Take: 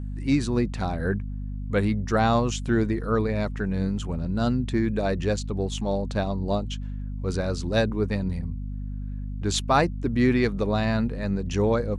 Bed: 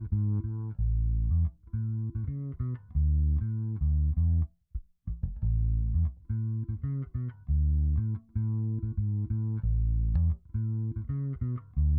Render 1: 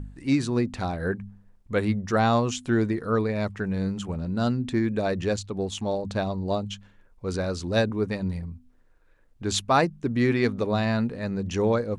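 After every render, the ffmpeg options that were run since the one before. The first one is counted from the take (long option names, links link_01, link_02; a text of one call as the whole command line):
ffmpeg -i in.wav -af "bandreject=frequency=50:width_type=h:width=4,bandreject=frequency=100:width_type=h:width=4,bandreject=frequency=150:width_type=h:width=4,bandreject=frequency=200:width_type=h:width=4,bandreject=frequency=250:width_type=h:width=4" out.wav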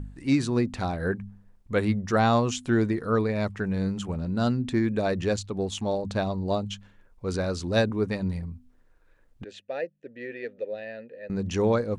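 ffmpeg -i in.wav -filter_complex "[0:a]asettb=1/sr,asplit=3[link_01][link_02][link_03];[link_01]atrim=end=9.444[link_04];[link_02]atrim=start=9.44:end=11.3,asetpts=PTS-STARTPTS,afade=type=in:duration=0.004:curve=qsin,afade=type=out:start_time=1.856:duration=0.004:curve=qsin,asplit=3[link_05][link_06][link_07];[link_05]bandpass=frequency=530:width_type=q:width=8,volume=0dB[link_08];[link_06]bandpass=frequency=1840:width_type=q:width=8,volume=-6dB[link_09];[link_07]bandpass=frequency=2480:width_type=q:width=8,volume=-9dB[link_10];[link_08][link_09][link_10]amix=inputs=3:normalize=0[link_11];[link_03]atrim=start=11.296[link_12];[link_04][link_11]acrossfade=duration=0.004:curve1=hsin:curve2=qsin[link_13];[link_13][link_12]acrossfade=duration=0.004:curve1=qsin:curve2=hsin" out.wav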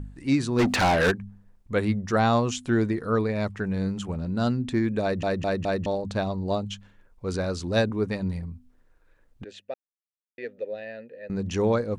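ffmpeg -i in.wav -filter_complex "[0:a]asplit=3[link_01][link_02][link_03];[link_01]afade=type=out:start_time=0.58:duration=0.02[link_04];[link_02]asplit=2[link_05][link_06];[link_06]highpass=frequency=720:poles=1,volume=29dB,asoftclip=type=tanh:threshold=-13.5dB[link_07];[link_05][link_07]amix=inputs=2:normalize=0,lowpass=frequency=5800:poles=1,volume=-6dB,afade=type=in:start_time=0.58:duration=0.02,afade=type=out:start_time=1.1:duration=0.02[link_08];[link_03]afade=type=in:start_time=1.1:duration=0.02[link_09];[link_04][link_08][link_09]amix=inputs=3:normalize=0,asplit=7[link_10][link_11][link_12][link_13][link_14][link_15][link_16];[link_10]atrim=end=5.232[link_17];[link_11]atrim=start=5.018:end=5.232[link_18];[link_12]atrim=start=5.018:end=5.232[link_19];[link_13]atrim=start=5.018:end=5.232[link_20];[link_14]atrim=start=5.858:end=9.74,asetpts=PTS-STARTPTS,afade=type=out:start_time=3.878:duration=0.004:curve=hsin[link_21];[link_15]atrim=start=9.74:end=10.38,asetpts=PTS-STARTPTS,volume=0[link_22];[link_16]atrim=start=10.38,asetpts=PTS-STARTPTS,afade=type=in:duration=0.004:curve=hsin[link_23];[link_17][link_18]acrossfade=duration=0.004:curve1=hsin:curve2=hsin[link_24];[link_24][link_19]acrossfade=duration=0.004:curve1=hsin:curve2=hsin[link_25];[link_25][link_20]acrossfade=duration=0.004:curve1=hsin:curve2=hsin[link_26];[link_21][link_22][link_23]concat=n=3:v=0:a=1[link_27];[link_26][link_27]acrossfade=duration=0.004:curve1=hsin:curve2=hsin" out.wav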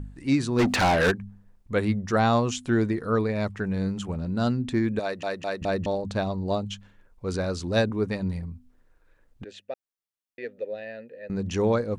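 ffmpeg -i in.wav -filter_complex "[0:a]asettb=1/sr,asplit=3[link_01][link_02][link_03];[link_01]atrim=end=4.994[link_04];[link_02]atrim=start=4.99:end=5.62,asetpts=PTS-STARTPTS,afade=type=in:duration=0.004:curve=qsin,afade=type=out:start_time=0.626:duration=0.004:curve=qsin,highpass=frequency=650:poles=1[link_05];[link_03]atrim=start=5.616[link_06];[link_04][link_05]acrossfade=duration=0.004:curve1=hsin:curve2=qsin[link_07];[link_07][link_06]acrossfade=duration=0.004:curve1=qsin:curve2=hsin" out.wav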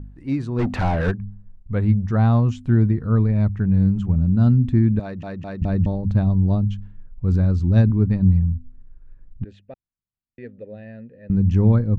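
ffmpeg -i in.wav -af "lowpass=frequency=1000:poles=1,asubboost=boost=9.5:cutoff=160" out.wav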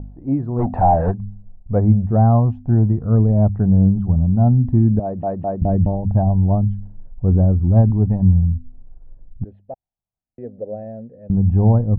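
ffmpeg -i in.wav -af "aphaser=in_gain=1:out_gain=1:delay=1.2:decay=0.33:speed=0.56:type=sinusoidal,lowpass=frequency=720:width_type=q:width=3.9" out.wav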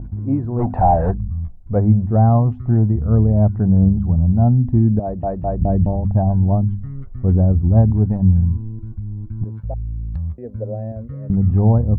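ffmpeg -i in.wav -i bed.wav -filter_complex "[1:a]volume=1.5dB[link_01];[0:a][link_01]amix=inputs=2:normalize=0" out.wav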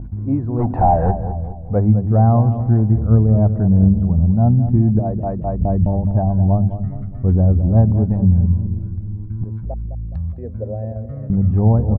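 ffmpeg -i in.wav -filter_complex "[0:a]asplit=2[link_01][link_02];[link_02]adelay=209,lowpass=frequency=1000:poles=1,volume=-9.5dB,asplit=2[link_03][link_04];[link_04]adelay=209,lowpass=frequency=1000:poles=1,volume=0.52,asplit=2[link_05][link_06];[link_06]adelay=209,lowpass=frequency=1000:poles=1,volume=0.52,asplit=2[link_07][link_08];[link_08]adelay=209,lowpass=frequency=1000:poles=1,volume=0.52,asplit=2[link_09][link_10];[link_10]adelay=209,lowpass=frequency=1000:poles=1,volume=0.52,asplit=2[link_11][link_12];[link_12]adelay=209,lowpass=frequency=1000:poles=1,volume=0.52[link_13];[link_01][link_03][link_05][link_07][link_09][link_11][link_13]amix=inputs=7:normalize=0" out.wav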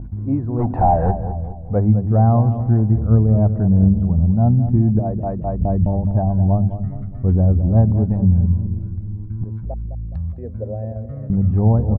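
ffmpeg -i in.wav -af "volume=-1dB" out.wav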